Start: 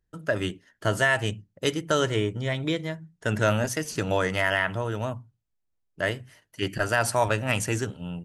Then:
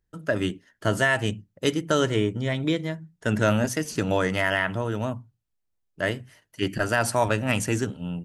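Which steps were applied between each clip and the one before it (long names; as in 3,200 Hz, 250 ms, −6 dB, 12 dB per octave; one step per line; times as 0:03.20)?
dynamic equaliser 240 Hz, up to +6 dB, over −42 dBFS, Q 1.4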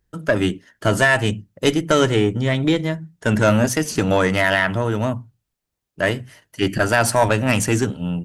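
one-sided soft clipper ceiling −14 dBFS
level +8 dB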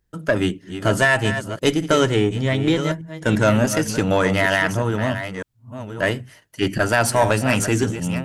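delay that plays each chunk backwards 603 ms, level −10 dB
level −1 dB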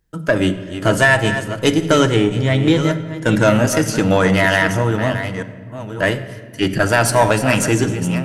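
rectangular room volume 2,300 cubic metres, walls mixed, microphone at 0.62 metres
level +3 dB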